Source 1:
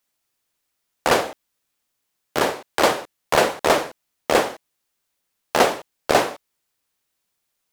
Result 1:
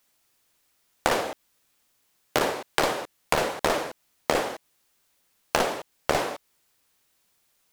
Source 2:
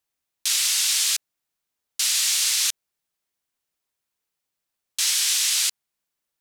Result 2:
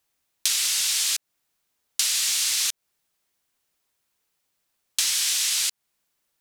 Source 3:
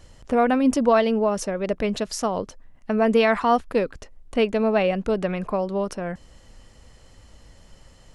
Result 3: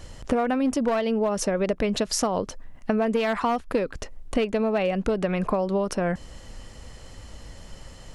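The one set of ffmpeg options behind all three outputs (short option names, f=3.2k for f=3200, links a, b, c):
-af "aeval=exprs='clip(val(0),-1,0.178)':c=same,acompressor=threshold=-27dB:ratio=16,volume=7dB"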